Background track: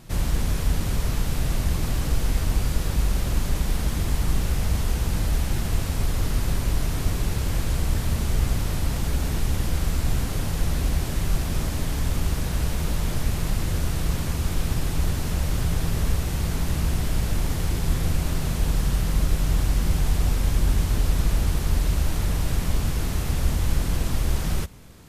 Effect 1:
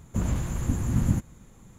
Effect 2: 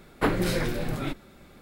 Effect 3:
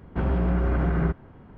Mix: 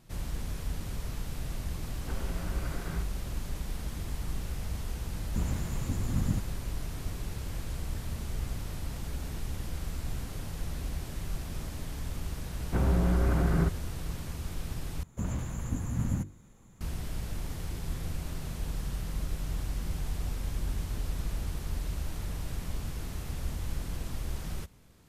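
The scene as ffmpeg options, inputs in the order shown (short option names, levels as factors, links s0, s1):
-filter_complex "[3:a]asplit=2[s0][s1];[1:a]asplit=2[s2][s3];[0:a]volume=0.251[s4];[s0]crystalizer=i=8.5:c=0[s5];[s1]equalizer=f=100:t=o:w=0.77:g=5[s6];[s3]bandreject=f=50:t=h:w=6,bandreject=f=100:t=h:w=6,bandreject=f=150:t=h:w=6,bandreject=f=200:t=h:w=6,bandreject=f=250:t=h:w=6,bandreject=f=300:t=h:w=6,bandreject=f=350:t=h:w=6,bandreject=f=400:t=h:w=6,bandreject=f=450:t=h:w=6,bandreject=f=500:t=h:w=6[s7];[s4]asplit=2[s8][s9];[s8]atrim=end=15.034[s10];[s7]atrim=end=1.78,asetpts=PTS-STARTPTS,volume=0.531[s11];[s9]atrim=start=16.806[s12];[s5]atrim=end=1.57,asetpts=PTS-STARTPTS,volume=0.15,afade=t=in:d=0.004:c=hsin,afade=t=out:st=1.566:d=0.004:c=hsin,adelay=1910[s13];[s2]atrim=end=1.78,asetpts=PTS-STARTPTS,volume=0.473,afade=t=in:d=0.004:c=hsin,afade=t=out:st=1.776:d=0.004:c=hsin,adelay=5200[s14];[s6]atrim=end=1.57,asetpts=PTS-STARTPTS,volume=0.668,afade=t=in:d=0.004:c=hsin,afade=t=out:st=1.566:d=0.004:c=hsin,adelay=12570[s15];[s10][s11]acrossfade=d=0.004:c1=hsin:c2=hsin[s16];[s16][s12]acrossfade=d=0.004:c1=hsin:c2=hsin[s17];[s17][s13][s14][s15]amix=inputs=4:normalize=0"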